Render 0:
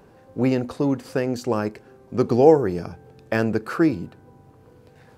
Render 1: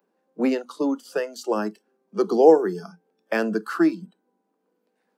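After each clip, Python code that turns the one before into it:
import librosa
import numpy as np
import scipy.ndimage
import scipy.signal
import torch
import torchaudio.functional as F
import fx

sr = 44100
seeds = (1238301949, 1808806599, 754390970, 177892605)

y = scipy.signal.sosfilt(scipy.signal.butter(16, 180.0, 'highpass', fs=sr, output='sos'), x)
y = fx.noise_reduce_blind(y, sr, reduce_db=20)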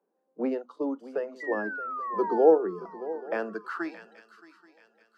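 y = fx.spec_paint(x, sr, seeds[0], shape='fall', start_s=1.4, length_s=0.99, low_hz=850.0, high_hz=2000.0, level_db=-25.0)
y = fx.echo_swing(y, sr, ms=830, ratio=3, feedback_pct=33, wet_db=-16.0)
y = fx.filter_sweep_bandpass(y, sr, from_hz=530.0, to_hz=3200.0, start_s=3.11, end_s=4.23, q=0.73)
y = y * 10.0 ** (-4.5 / 20.0)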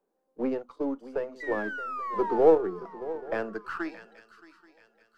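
y = np.where(x < 0.0, 10.0 ** (-3.0 / 20.0) * x, x)
y = y * 10.0 ** (1.0 / 20.0)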